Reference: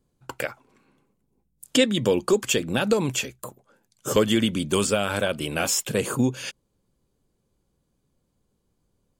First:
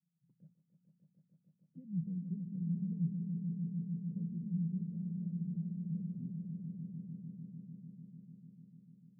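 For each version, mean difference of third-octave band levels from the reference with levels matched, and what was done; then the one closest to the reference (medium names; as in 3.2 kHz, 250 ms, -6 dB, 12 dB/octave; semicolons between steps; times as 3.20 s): 23.0 dB: Butterworth band-pass 170 Hz, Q 6.7; echo with a slow build-up 149 ms, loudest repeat 5, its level -8 dB; trim -1.5 dB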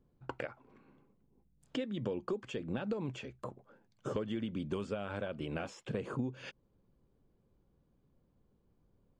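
7.5 dB: compression 6:1, threshold -34 dBFS, peak gain reduction 18.5 dB; tape spacing loss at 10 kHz 31 dB; trim +1 dB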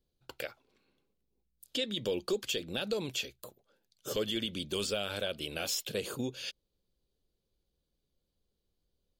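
3.0 dB: ten-band graphic EQ 125 Hz -9 dB, 250 Hz -7 dB, 1 kHz -10 dB, 2 kHz -5 dB, 4 kHz +8 dB, 8 kHz -10 dB; peak limiter -17 dBFS, peak gain reduction 7.5 dB; trim -5.5 dB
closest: third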